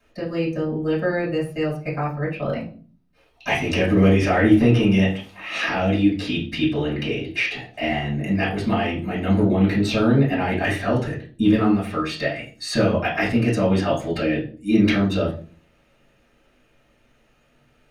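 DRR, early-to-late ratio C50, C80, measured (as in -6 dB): -8.5 dB, 8.0 dB, 14.0 dB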